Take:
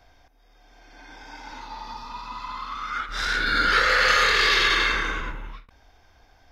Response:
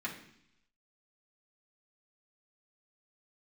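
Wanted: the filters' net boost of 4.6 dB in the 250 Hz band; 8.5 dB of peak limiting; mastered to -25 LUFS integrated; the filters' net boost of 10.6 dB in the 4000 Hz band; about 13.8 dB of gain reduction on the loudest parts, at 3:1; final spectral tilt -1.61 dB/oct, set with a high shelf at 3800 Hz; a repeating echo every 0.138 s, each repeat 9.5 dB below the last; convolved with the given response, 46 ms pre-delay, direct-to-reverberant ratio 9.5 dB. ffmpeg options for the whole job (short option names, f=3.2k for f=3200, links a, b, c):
-filter_complex "[0:a]equalizer=f=250:t=o:g=6,highshelf=f=3.8k:g=6.5,equalizer=f=4k:t=o:g=8.5,acompressor=threshold=-29dB:ratio=3,alimiter=limit=-23dB:level=0:latency=1,aecho=1:1:138|276|414|552:0.335|0.111|0.0365|0.012,asplit=2[a][b];[1:a]atrim=start_sample=2205,adelay=46[c];[b][c]afir=irnorm=-1:irlink=0,volume=-12.5dB[d];[a][d]amix=inputs=2:normalize=0,volume=6dB"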